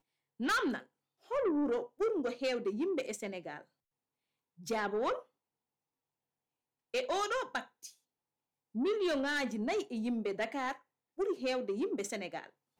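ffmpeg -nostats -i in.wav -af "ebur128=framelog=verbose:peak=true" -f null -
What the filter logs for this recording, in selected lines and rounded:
Integrated loudness:
  I:         -35.2 LUFS
  Threshold: -45.9 LUFS
Loudness range:
  LRA:         5.7 LU
  Threshold: -57.0 LUFS
  LRA low:   -40.5 LUFS
  LRA high:  -34.8 LUFS
True peak:
  Peak:      -27.0 dBFS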